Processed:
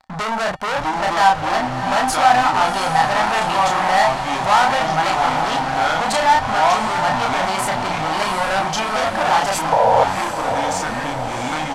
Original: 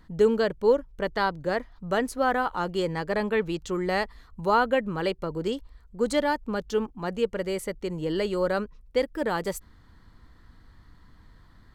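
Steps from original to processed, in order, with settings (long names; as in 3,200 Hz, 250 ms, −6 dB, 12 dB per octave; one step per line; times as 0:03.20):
delay with pitch and tempo change per echo 581 ms, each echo −5 semitones, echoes 2, each echo −6 dB
leveller curve on the samples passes 5
double-tracking delay 32 ms −2.5 dB
leveller curve on the samples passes 2
low-pass filter 9,300 Hz 12 dB per octave
low shelf with overshoot 570 Hz −10 dB, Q 3
tuned comb filter 260 Hz, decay 0.22 s, harmonics odd, mix 50%
sound drawn into the spectrogram noise, 0:09.72–0:10.04, 450–1,000 Hz −12 dBFS
on a send: feedback delay with all-pass diffusion 716 ms, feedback 58%, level −8 dB
on the sum: level −1.5 dB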